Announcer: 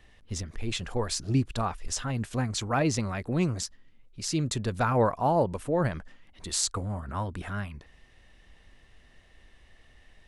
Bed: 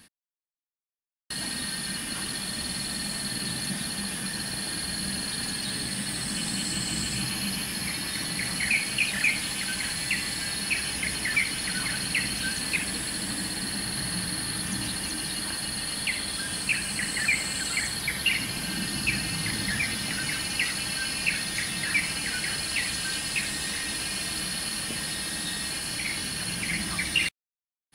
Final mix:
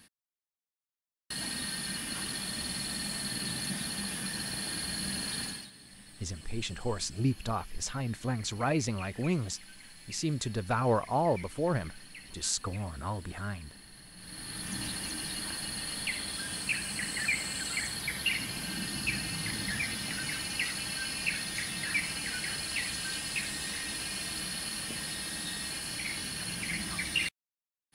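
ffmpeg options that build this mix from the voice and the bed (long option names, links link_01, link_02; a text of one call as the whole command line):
ffmpeg -i stem1.wav -i stem2.wav -filter_complex "[0:a]adelay=5900,volume=-3.5dB[link_01];[1:a]volume=12.5dB,afade=type=out:start_time=5.39:duration=0.31:silence=0.125893,afade=type=in:start_time=14.16:duration=0.65:silence=0.149624[link_02];[link_01][link_02]amix=inputs=2:normalize=0" out.wav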